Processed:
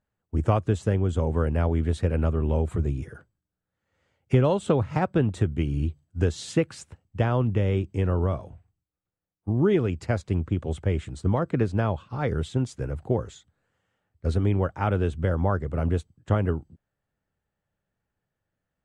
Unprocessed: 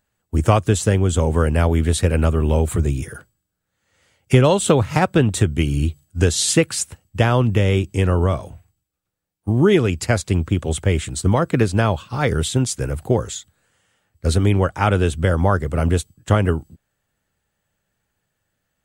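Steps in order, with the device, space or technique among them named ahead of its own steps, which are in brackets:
through cloth (low-pass filter 7,800 Hz 12 dB per octave; high-shelf EQ 2,400 Hz −13 dB)
level −6.5 dB

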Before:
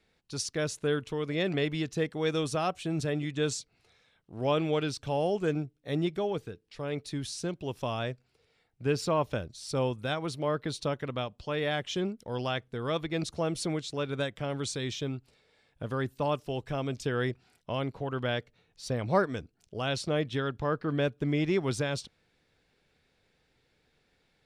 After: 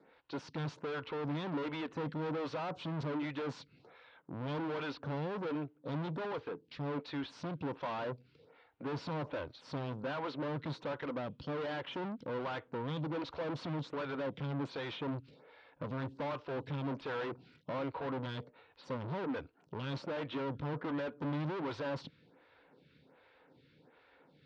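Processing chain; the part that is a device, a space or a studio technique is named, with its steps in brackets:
vibe pedal into a guitar amplifier (phaser with staggered stages 1.3 Hz; tube saturation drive 48 dB, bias 0.25; loudspeaker in its box 91–4,000 Hz, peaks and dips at 150 Hz +7 dB, 280 Hz +9 dB, 520 Hz +7 dB, 960 Hz +9 dB, 1,400 Hz +5 dB)
level +7 dB

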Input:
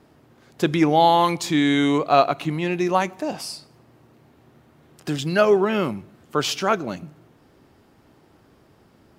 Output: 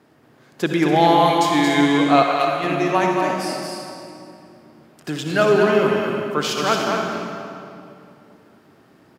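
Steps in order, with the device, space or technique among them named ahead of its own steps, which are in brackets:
stadium PA (high-pass filter 130 Hz 12 dB per octave; parametric band 1,700 Hz +3.5 dB 0.83 octaves; loudspeakers that aren't time-aligned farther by 77 metres −5 dB, 98 metres −10 dB; convolution reverb RT60 2.6 s, pre-delay 54 ms, DRR 2 dB)
0:02.22–0:02.64: parametric band 220 Hz −9.5 dB 2 octaves
level −1 dB

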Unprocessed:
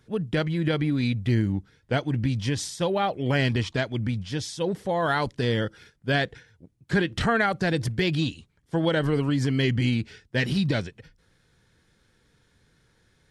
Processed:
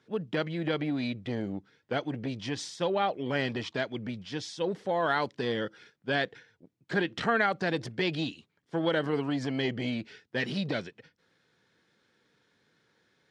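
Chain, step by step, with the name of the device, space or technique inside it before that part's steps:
public-address speaker with an overloaded transformer (saturating transformer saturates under 340 Hz; band-pass filter 220–5,400 Hz)
level −2.5 dB

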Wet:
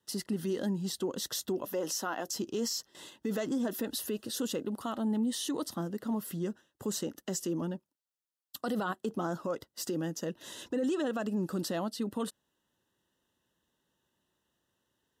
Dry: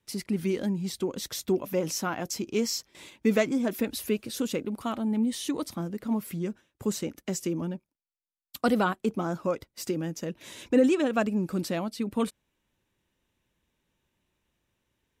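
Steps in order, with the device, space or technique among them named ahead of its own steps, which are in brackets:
0:01.65–0:02.28: high-pass filter 280 Hz 12 dB per octave
PA system with an anti-feedback notch (high-pass filter 200 Hz 6 dB per octave; Butterworth band-reject 2,300 Hz, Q 3.2; brickwall limiter −24.5 dBFS, peak gain reduction 12 dB)

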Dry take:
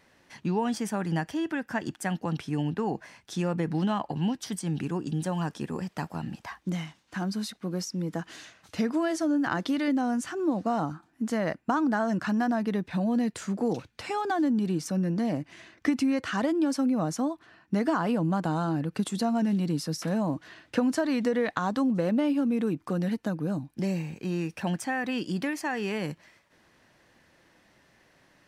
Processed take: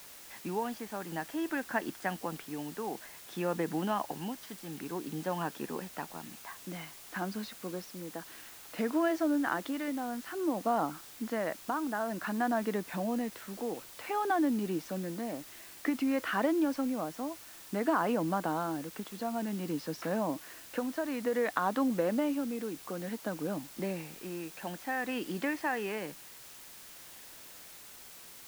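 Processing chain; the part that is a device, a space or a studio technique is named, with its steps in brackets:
shortwave radio (band-pass filter 300–2,800 Hz; amplitude tremolo 0.55 Hz, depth 52%; white noise bed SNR 16 dB)

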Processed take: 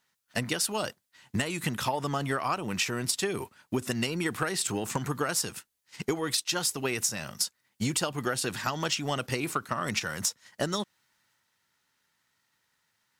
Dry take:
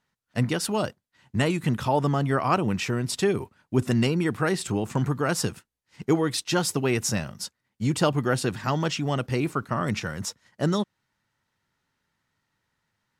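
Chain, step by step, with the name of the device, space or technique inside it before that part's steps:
spectral tilt +2.5 dB per octave
drum-bus smash (transient designer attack +7 dB, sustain +3 dB; downward compressor 12 to 1, threshold −24 dBFS, peak gain reduction 13 dB; soft clipping −15 dBFS, distortion −21 dB)

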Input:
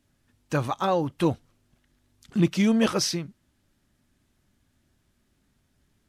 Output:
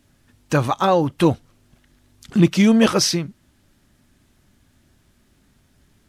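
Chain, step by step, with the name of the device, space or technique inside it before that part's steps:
parallel compression (in parallel at −6 dB: downward compressor, threshold −37 dBFS, peak gain reduction 20 dB)
on the sum: level +6.5 dB

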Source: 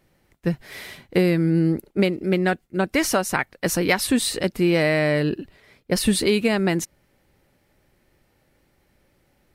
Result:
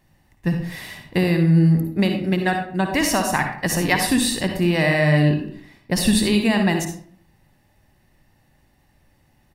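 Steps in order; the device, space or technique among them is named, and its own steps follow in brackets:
microphone above a desk (comb filter 1.1 ms, depth 54%; convolution reverb RT60 0.55 s, pre-delay 51 ms, DRR 4.5 dB)

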